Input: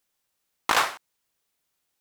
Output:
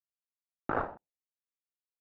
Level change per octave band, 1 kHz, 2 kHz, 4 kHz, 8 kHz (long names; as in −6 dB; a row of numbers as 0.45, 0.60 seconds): −10.5 dB, −14.5 dB, below −35 dB, below −40 dB